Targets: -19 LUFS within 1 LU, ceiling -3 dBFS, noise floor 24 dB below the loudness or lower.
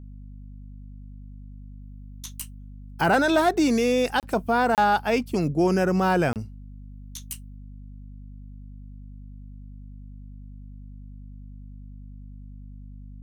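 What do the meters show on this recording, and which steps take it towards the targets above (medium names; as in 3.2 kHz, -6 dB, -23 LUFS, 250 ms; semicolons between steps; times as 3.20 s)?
dropouts 3; longest dropout 28 ms; hum 50 Hz; highest harmonic 250 Hz; hum level -39 dBFS; loudness -23.0 LUFS; peak level -11.0 dBFS; loudness target -19.0 LUFS
-> interpolate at 4.20/4.75/6.33 s, 28 ms; de-hum 50 Hz, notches 5; trim +4 dB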